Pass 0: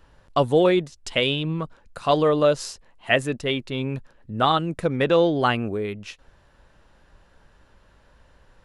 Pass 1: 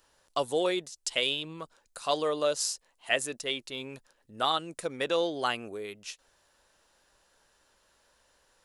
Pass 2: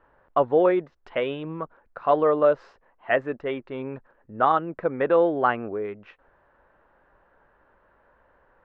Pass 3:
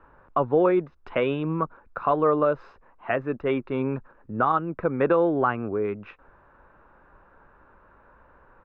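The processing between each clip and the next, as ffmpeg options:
ffmpeg -i in.wav -af "bass=frequency=250:gain=-14,treble=frequency=4000:gain=15,volume=-8.5dB" out.wav
ffmpeg -i in.wav -af "lowpass=frequency=1700:width=0.5412,lowpass=frequency=1700:width=1.3066,volume=9dB" out.wav
ffmpeg -i in.wav -filter_complex "[0:a]aemphasis=mode=reproduction:type=75fm,aecho=1:1:0.8:0.36,acrossover=split=120[link_01][link_02];[link_02]alimiter=limit=-16.5dB:level=0:latency=1:release=464[link_03];[link_01][link_03]amix=inputs=2:normalize=0,volume=5.5dB" out.wav

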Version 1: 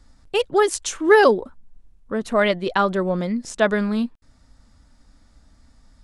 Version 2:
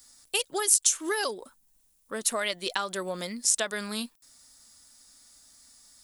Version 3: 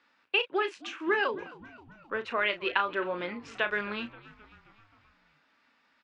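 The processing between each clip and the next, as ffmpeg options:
ffmpeg -i in.wav -af "aemphasis=mode=production:type=riaa,acompressor=threshold=-21dB:ratio=6,highshelf=frequency=3800:gain=11.5,volume=-6.5dB" out.wav
ffmpeg -i in.wav -filter_complex "[0:a]highpass=260,equalizer=frequency=370:width_type=q:width=4:gain=4,equalizer=frequency=690:width_type=q:width=4:gain=-4,equalizer=frequency=990:width_type=q:width=4:gain=4,equalizer=frequency=1500:width_type=q:width=4:gain=5,equalizer=frequency=2600:width_type=q:width=4:gain=9,lowpass=frequency=2700:width=0.5412,lowpass=frequency=2700:width=1.3066,asplit=2[link_01][link_02];[link_02]adelay=34,volume=-10dB[link_03];[link_01][link_03]amix=inputs=2:normalize=0,asplit=6[link_04][link_05][link_06][link_07][link_08][link_09];[link_05]adelay=264,afreqshift=-77,volume=-19.5dB[link_10];[link_06]adelay=528,afreqshift=-154,volume=-23.8dB[link_11];[link_07]adelay=792,afreqshift=-231,volume=-28.1dB[link_12];[link_08]adelay=1056,afreqshift=-308,volume=-32.4dB[link_13];[link_09]adelay=1320,afreqshift=-385,volume=-36.7dB[link_14];[link_04][link_10][link_11][link_12][link_13][link_14]amix=inputs=6:normalize=0" out.wav

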